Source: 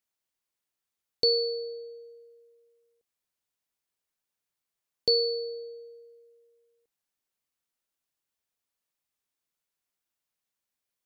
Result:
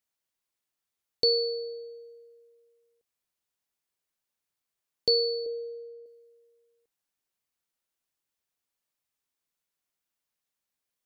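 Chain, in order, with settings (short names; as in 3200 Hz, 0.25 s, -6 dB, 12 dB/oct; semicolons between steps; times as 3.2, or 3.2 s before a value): 5.46–6.06 tilt -3 dB/oct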